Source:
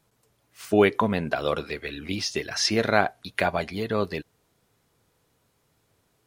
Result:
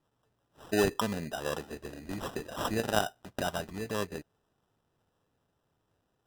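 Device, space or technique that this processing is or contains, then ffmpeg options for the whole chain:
crushed at another speed: -af "asetrate=22050,aresample=44100,acrusher=samples=40:mix=1:aa=0.000001,asetrate=88200,aresample=44100,volume=0.398"

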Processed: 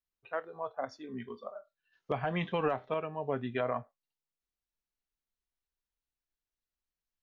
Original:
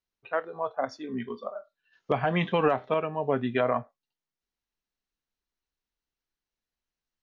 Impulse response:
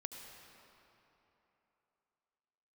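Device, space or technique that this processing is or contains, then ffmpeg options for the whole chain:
low shelf boost with a cut just above: -af "lowshelf=f=81:g=6.5,equalizer=f=230:t=o:w=0.77:g=-2,volume=0.447"

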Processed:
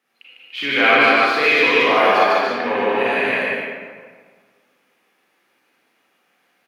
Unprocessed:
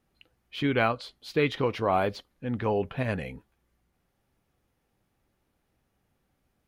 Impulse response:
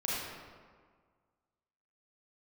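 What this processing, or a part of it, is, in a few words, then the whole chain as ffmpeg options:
stadium PA: -filter_complex "[0:a]highpass=f=140:w=0.5412,highpass=f=140:w=1.3066,equalizer=f=2100:t=o:w=1.6:g=8,aecho=1:1:151.6|291.5:0.891|0.708[s0];[1:a]atrim=start_sample=2205[s1];[s0][s1]afir=irnorm=-1:irlink=0,highpass=370,equalizer=f=580:t=o:w=2.2:g=-3.5,volume=1.5"

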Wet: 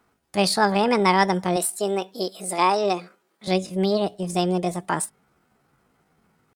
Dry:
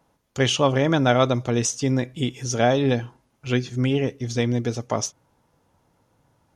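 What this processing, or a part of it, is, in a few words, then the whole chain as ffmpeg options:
chipmunk voice: -filter_complex "[0:a]asettb=1/sr,asplit=3[s0][s1][s2];[s0]atrim=end=1.574[s3];[s1]atrim=start=1.57:end=3.49,asetpts=PTS-STARTPTS,afade=t=in:d=0.004:c=qsin,afade=t=out:st=1.916:d=0.004:c=qsin,highpass=210[s4];[s2]atrim=start=3.486[s5];[s3][s4]acrossfade=d=0.004:c1=hsin:c2=qsin[s6];[s6][s5]acrossfade=d=0.004:c1=qsin:c2=hsin,asetrate=66075,aresample=44100,atempo=0.66742"

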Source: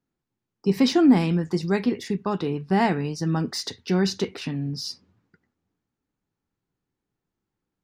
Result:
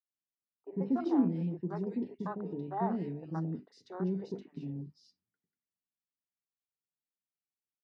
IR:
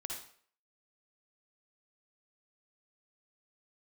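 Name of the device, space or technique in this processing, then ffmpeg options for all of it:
over-cleaned archive recording: -filter_complex "[0:a]highpass=130,lowpass=5000,equalizer=f=4600:t=o:w=1:g=-4,bandreject=f=50:t=h:w=6,bandreject=f=100:t=h:w=6,bandreject=f=150:t=h:w=6,bandreject=f=200:t=h:w=6,bandreject=f=250:t=h:w=6,bandreject=f=300:t=h:w=6,bandreject=f=350:t=h:w=6,bandreject=f=400:t=h:w=6,acrossover=split=470|2000[s0][s1][s2];[s0]adelay=100[s3];[s2]adelay=190[s4];[s3][s1][s4]amix=inputs=3:normalize=0,afwtdn=0.0316,volume=0.355"

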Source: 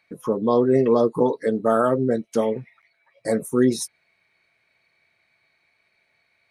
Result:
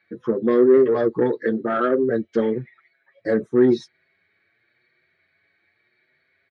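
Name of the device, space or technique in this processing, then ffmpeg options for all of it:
barber-pole flanger into a guitar amplifier: -filter_complex "[0:a]asplit=2[s0][s1];[s1]adelay=6.6,afreqshift=0.88[s2];[s0][s2]amix=inputs=2:normalize=1,asoftclip=type=tanh:threshold=0.158,highpass=87,equalizer=f=89:t=q:w=4:g=7,equalizer=f=360:t=q:w=4:g=8,equalizer=f=680:t=q:w=4:g=-4,equalizer=f=960:t=q:w=4:g=-10,equalizer=f=1700:t=q:w=4:g=8,equalizer=f=2600:t=q:w=4:g=-8,lowpass=f=3900:w=0.5412,lowpass=f=3900:w=1.3066,volume=1.58"

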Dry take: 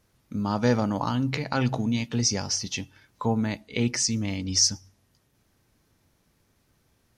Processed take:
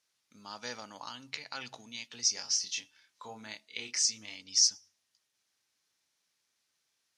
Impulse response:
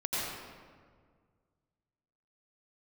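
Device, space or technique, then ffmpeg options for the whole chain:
piezo pickup straight into a mixer: -filter_complex "[0:a]asettb=1/sr,asplit=3[s0][s1][s2];[s0]atrim=end=2.334[s3];[s1]atrim=start=2.33:end=4.36,asetpts=PTS-STARTPTS,afade=t=in:d=0.004:c=qsin,afade=t=out:st=2.026:d=0.004:c=qsin,asplit=2[s4][s5];[s5]adelay=28,volume=0.562[s6];[s4][s6]amix=inputs=2:normalize=0,atrim=end_sample=89523[s7];[s2]atrim=start=4.356[s8];[s3][s7]acrossfade=d=0.004:c1=hsin:c2=qsin[s9];[s9][s8]acrossfade=d=0.004:c1=qsin:c2=hsin,lowpass=5600,aderivative,volume=1.26"

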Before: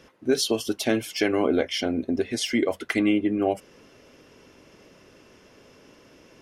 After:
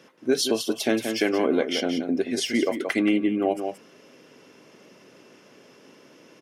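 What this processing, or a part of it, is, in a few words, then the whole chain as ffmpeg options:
ducked delay: -filter_complex "[0:a]highpass=f=140:w=0.5412,highpass=f=140:w=1.3066,asplit=3[s0][s1][s2];[s1]adelay=177,volume=0.531[s3];[s2]apad=whole_len=290675[s4];[s3][s4]sidechaincompress=threshold=0.0562:ratio=8:attack=24:release=229[s5];[s0][s5]amix=inputs=2:normalize=0"

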